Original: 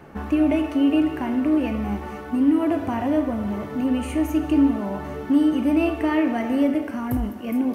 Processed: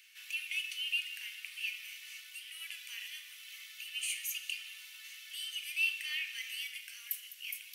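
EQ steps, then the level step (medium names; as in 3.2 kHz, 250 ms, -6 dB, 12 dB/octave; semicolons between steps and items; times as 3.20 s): steep high-pass 2.5 kHz 36 dB/octave; +5.0 dB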